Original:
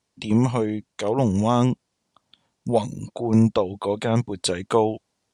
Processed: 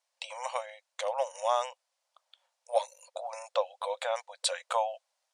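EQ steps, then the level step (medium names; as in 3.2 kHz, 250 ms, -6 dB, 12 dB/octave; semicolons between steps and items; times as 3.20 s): brick-wall FIR high-pass 500 Hz; -4.5 dB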